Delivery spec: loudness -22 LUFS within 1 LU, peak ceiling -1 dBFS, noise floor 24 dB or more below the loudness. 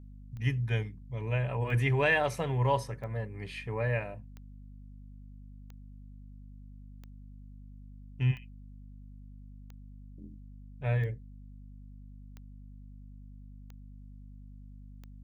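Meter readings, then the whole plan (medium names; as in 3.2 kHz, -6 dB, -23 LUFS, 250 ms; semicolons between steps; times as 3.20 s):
clicks found 12; hum 50 Hz; highest harmonic 250 Hz; hum level -46 dBFS; loudness -31.5 LUFS; peak level -15.0 dBFS; loudness target -22.0 LUFS
-> de-click; de-hum 50 Hz, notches 5; trim +9.5 dB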